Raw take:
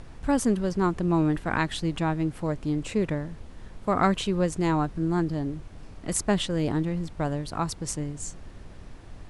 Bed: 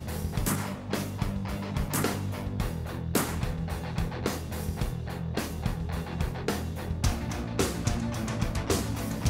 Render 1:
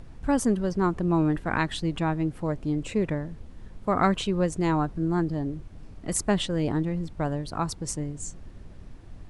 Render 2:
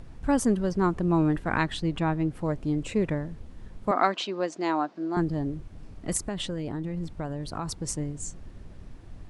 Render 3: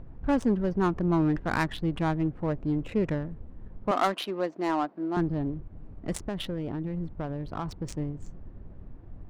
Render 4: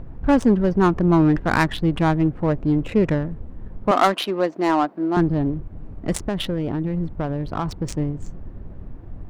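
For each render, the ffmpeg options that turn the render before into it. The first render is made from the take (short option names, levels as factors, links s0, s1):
-af "afftdn=nr=6:nf=-45"
-filter_complex "[0:a]asettb=1/sr,asplit=3[s0][s1][s2];[s0]atrim=end=1.644[s3];[s1]atrim=start=1.64:end=2.35,asetpts=PTS-STARTPTS,afade=t=in:d=0.004:c=qsin,afade=t=out:st=0.706:d=0.004:c=qsin,highshelf=f=7200:g=-6.5[s4];[s2]atrim=start=2.346[s5];[s3][s4]acrossfade=d=0.004:c1=hsin:c2=qsin[s6];[s6][s5]acrossfade=d=0.004:c1=qsin:c2=hsin,asettb=1/sr,asplit=3[s7][s8][s9];[s7]atrim=end=3.914[s10];[s8]atrim=start=3.91:end=5.17,asetpts=PTS-STARTPTS,afade=t=in:d=0.004:c=qsin,afade=t=out:st=1.256:d=0.004:c=qsin,highpass=f=280:w=0.5412,highpass=f=280:w=1.3066,equalizer=f=450:t=q:w=4:g=-8,equalizer=f=680:t=q:w=4:g=4,equalizer=f=4600:t=q:w=4:g=4,lowpass=f=6300:w=0.5412,lowpass=f=6300:w=1.3066[s11];[s9]atrim=start=5.166[s12];[s10][s11]acrossfade=d=0.004:c1=hsin:c2=qsin[s13];[s13][s12]acrossfade=d=0.004:c1=qsin:c2=hsin,asettb=1/sr,asplit=3[s14][s15][s16];[s14]atrim=end=6.174[s17];[s15]atrim=start=6.17:end=7.77,asetpts=PTS-STARTPTS,afade=t=in:d=0.004:c=qsin,afade=t=out:st=1.596:d=0.004:c=qsin,acompressor=threshold=0.0447:ratio=10:attack=3.2:release=140:knee=1:detection=peak[s18];[s16]atrim=start=7.766[s19];[s17][s18]acrossfade=d=0.004:c1=hsin:c2=qsin[s20];[s20][s19]acrossfade=d=0.004:c1=qsin:c2=hsin"
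-af "asoftclip=type=tanh:threshold=0.2,adynamicsmooth=sensitivity=5:basefreq=1200"
-af "volume=2.66"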